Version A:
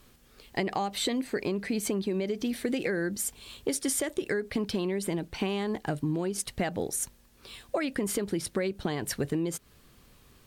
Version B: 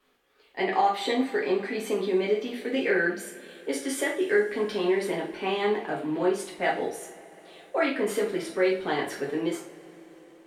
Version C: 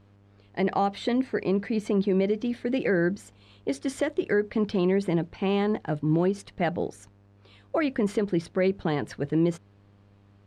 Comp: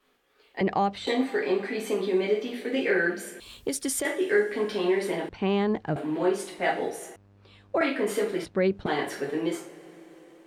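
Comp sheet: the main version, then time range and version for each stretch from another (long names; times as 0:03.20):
B
0:00.61–0:01.07: punch in from C
0:03.40–0:04.05: punch in from A
0:05.29–0:05.96: punch in from C
0:07.16–0:07.81: punch in from C
0:08.45–0:08.86: punch in from C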